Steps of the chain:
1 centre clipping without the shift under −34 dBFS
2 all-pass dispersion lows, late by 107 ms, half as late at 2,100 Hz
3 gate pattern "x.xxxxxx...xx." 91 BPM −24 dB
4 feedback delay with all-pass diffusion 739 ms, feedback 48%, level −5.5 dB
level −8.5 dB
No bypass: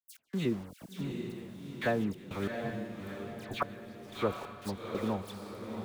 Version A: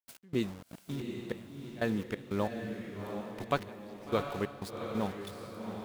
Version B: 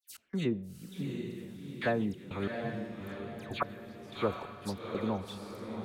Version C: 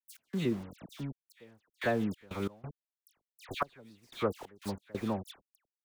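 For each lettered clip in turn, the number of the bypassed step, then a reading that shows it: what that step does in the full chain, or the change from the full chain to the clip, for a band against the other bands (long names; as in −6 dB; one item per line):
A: 2, change in crest factor +3.5 dB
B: 1, distortion level −18 dB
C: 4, echo-to-direct ratio −4.5 dB to none audible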